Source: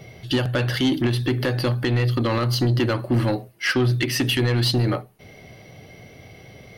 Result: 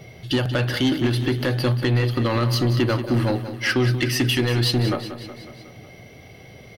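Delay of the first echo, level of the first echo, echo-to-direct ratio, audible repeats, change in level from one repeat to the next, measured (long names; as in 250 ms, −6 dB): 184 ms, −11.5 dB, −9.5 dB, 5, −4.5 dB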